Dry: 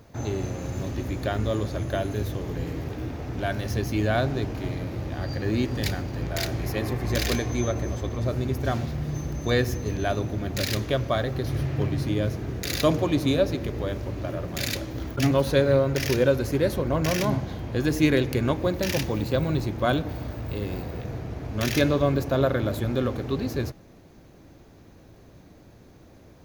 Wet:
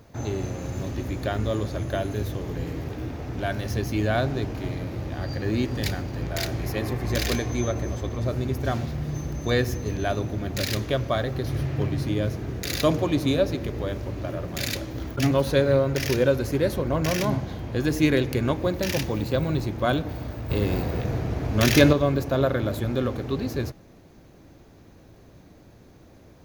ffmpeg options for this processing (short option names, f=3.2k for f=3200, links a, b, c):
-filter_complex "[0:a]asettb=1/sr,asplit=3[a][b][c];[a]atrim=end=20.504[d];[b]atrim=start=20.5:end=21.93,asetpts=PTS-STARTPTS,afade=t=in:d=0.004:c=qsin,afade=t=out:st=1.426:d=0.004:c=qsin,acontrast=62[e];[c]atrim=start=21.926[f];[d][e]acrossfade=d=0.004:c1=hsin:c2=qsin[g];[g][f]acrossfade=d=0.004:c1=qsin:c2=hsin"